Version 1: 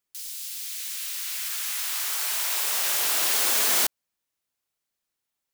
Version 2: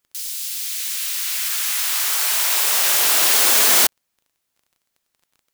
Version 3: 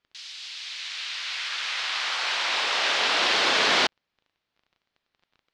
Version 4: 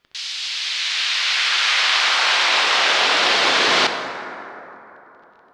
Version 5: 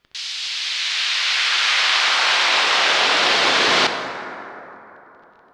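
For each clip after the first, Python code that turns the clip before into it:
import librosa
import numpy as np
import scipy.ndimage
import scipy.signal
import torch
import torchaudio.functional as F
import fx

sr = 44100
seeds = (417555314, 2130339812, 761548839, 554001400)

y1 = fx.dmg_crackle(x, sr, seeds[0], per_s=22.0, level_db=-51.0)
y1 = y1 * librosa.db_to_amplitude(8.0)
y2 = scipy.signal.sosfilt(scipy.signal.butter(4, 4300.0, 'lowpass', fs=sr, output='sos'), y1)
y3 = fx.rider(y2, sr, range_db=4, speed_s=0.5)
y3 = fx.rev_plate(y3, sr, seeds[1], rt60_s=3.6, hf_ratio=0.35, predelay_ms=0, drr_db=5.5)
y3 = y3 * librosa.db_to_amplitude(8.0)
y4 = fx.low_shelf(y3, sr, hz=140.0, db=5.5)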